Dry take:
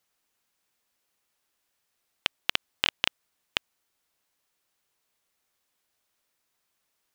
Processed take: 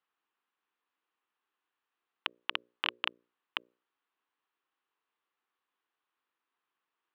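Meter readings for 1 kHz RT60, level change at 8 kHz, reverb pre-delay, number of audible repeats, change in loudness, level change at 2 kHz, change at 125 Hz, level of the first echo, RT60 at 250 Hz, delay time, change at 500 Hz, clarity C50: no reverb, under -30 dB, no reverb, no echo, -7.0 dB, -6.0 dB, under -15 dB, no echo, no reverb, no echo, -8.0 dB, no reverb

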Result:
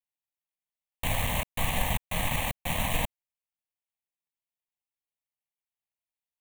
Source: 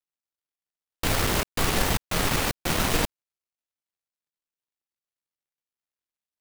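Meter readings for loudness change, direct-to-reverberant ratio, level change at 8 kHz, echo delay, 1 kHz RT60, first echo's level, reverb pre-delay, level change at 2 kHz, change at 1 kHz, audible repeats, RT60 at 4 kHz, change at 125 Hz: -4.5 dB, no reverb, -7.0 dB, no echo, no reverb, no echo, no reverb, -4.5 dB, -4.0 dB, no echo, no reverb, -3.0 dB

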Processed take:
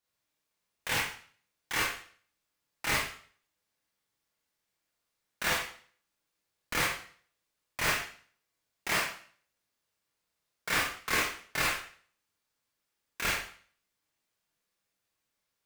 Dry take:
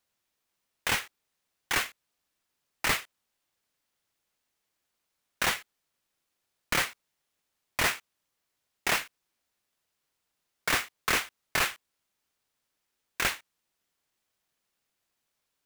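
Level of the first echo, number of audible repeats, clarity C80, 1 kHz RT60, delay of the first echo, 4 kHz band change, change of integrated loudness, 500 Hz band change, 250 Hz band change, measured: no echo, no echo, 7.0 dB, 0.50 s, no echo, -2.0 dB, -2.0 dB, -1.0 dB, -1.0 dB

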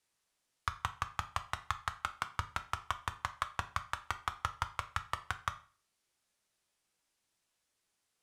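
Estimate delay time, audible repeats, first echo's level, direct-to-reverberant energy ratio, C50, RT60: no echo, no echo, no echo, 9.0 dB, 15.5 dB, 0.40 s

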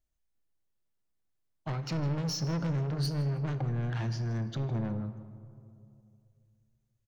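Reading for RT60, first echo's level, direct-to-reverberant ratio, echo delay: 2.6 s, -19.5 dB, 9.5 dB, 157 ms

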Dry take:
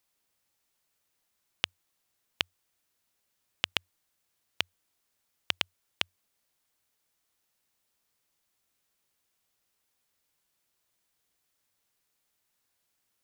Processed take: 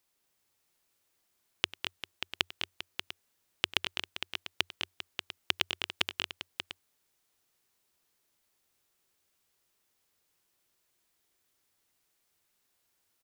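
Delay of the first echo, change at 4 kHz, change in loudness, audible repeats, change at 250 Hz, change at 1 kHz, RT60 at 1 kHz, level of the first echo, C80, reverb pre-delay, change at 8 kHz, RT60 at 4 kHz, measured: 96 ms, +2.0 dB, -1.0 dB, 5, +3.0 dB, +2.0 dB, no reverb, -19.0 dB, no reverb, no reverb, +2.0 dB, no reverb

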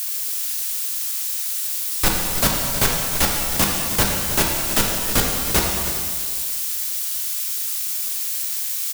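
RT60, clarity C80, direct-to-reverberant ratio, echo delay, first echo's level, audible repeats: 2.0 s, 2.0 dB, -1.5 dB, 316 ms, -11.5 dB, 1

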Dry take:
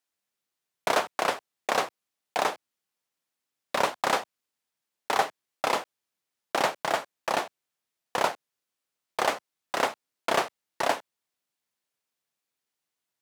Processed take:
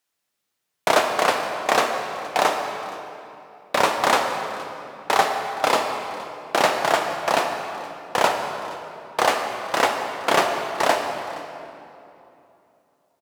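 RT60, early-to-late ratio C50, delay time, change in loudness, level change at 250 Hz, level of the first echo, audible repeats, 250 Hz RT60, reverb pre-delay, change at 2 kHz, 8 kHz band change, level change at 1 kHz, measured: 2.9 s, 4.5 dB, 469 ms, +6.5 dB, +8.0 dB, -20.0 dB, 1, 3.3 s, 5 ms, +7.5 dB, +7.0 dB, +8.0 dB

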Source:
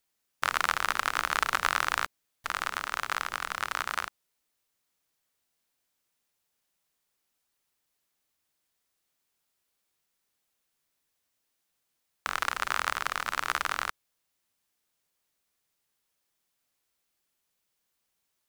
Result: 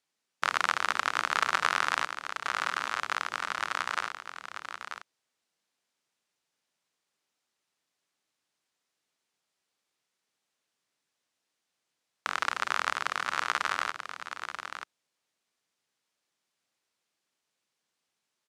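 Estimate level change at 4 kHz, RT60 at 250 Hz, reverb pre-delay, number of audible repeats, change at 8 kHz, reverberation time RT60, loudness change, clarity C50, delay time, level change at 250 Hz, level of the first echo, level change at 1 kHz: +0.5 dB, no reverb, no reverb, 1, -2.5 dB, no reverb, -0.5 dB, no reverb, 936 ms, 0.0 dB, -8.5 dB, +0.5 dB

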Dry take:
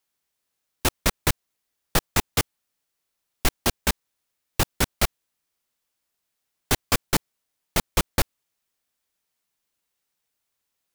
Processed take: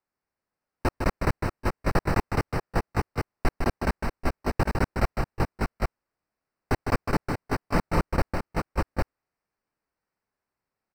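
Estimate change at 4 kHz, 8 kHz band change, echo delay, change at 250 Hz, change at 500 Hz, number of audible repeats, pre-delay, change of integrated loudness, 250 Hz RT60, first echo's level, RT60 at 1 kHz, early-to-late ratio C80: -13.5 dB, -17.0 dB, 155 ms, +3.0 dB, +2.5 dB, 4, no reverb, -3.5 dB, no reverb, -5.5 dB, no reverb, no reverb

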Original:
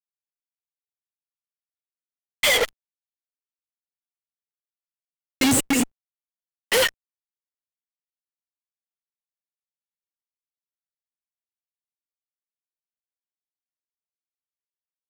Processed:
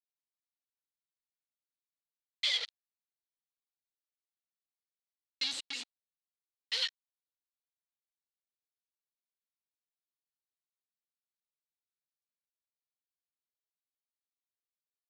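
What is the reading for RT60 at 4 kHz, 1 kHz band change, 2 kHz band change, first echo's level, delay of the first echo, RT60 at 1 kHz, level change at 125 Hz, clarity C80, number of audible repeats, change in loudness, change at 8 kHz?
no reverb, -25.0 dB, -17.0 dB, no echo, no echo, no reverb, under -40 dB, no reverb, no echo, -13.0 dB, -21.5 dB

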